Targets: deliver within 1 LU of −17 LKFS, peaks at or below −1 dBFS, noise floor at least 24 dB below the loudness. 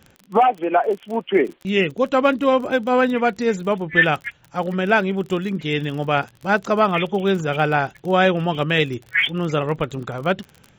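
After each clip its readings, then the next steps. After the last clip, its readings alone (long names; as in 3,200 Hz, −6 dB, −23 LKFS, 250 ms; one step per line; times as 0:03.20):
crackle rate 39 per second; integrated loudness −20.5 LKFS; sample peak −3.0 dBFS; target loudness −17.0 LKFS
→ click removal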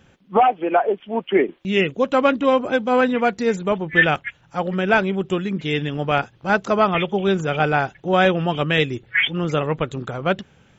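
crackle rate 0.19 per second; integrated loudness −20.5 LKFS; sample peak −3.0 dBFS; target loudness −17.0 LKFS
→ level +3.5 dB
brickwall limiter −1 dBFS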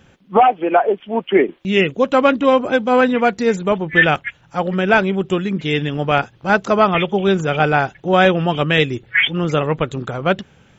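integrated loudness −17.0 LKFS; sample peak −1.0 dBFS; background noise floor −52 dBFS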